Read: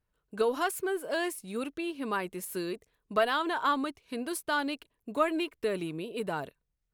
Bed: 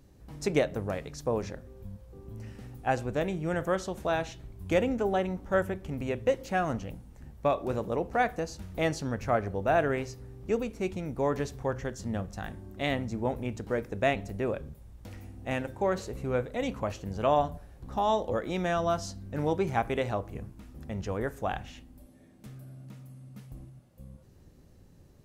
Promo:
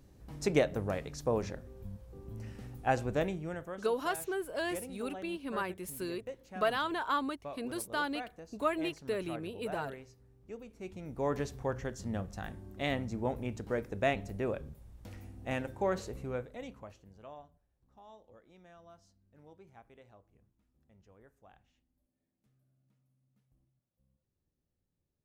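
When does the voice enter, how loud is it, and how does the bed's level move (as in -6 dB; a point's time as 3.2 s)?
3.45 s, -4.0 dB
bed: 3.21 s -1.5 dB
3.83 s -17 dB
10.61 s -17 dB
11.31 s -3.5 dB
16.08 s -3.5 dB
17.54 s -28.5 dB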